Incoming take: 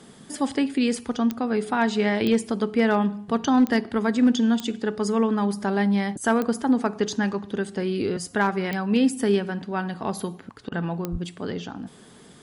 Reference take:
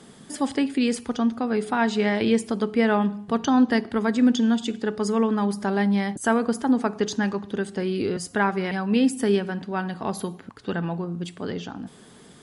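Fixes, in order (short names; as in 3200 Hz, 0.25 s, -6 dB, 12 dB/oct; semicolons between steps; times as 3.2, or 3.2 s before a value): clip repair -12 dBFS; de-click; 11.11–11.23 HPF 140 Hz 24 dB/oct; interpolate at 10.69, 27 ms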